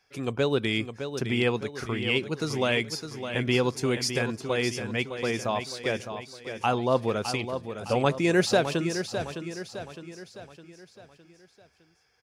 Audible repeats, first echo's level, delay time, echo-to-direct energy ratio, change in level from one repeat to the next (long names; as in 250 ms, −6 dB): 4, −9.0 dB, 610 ms, −8.0 dB, −6.5 dB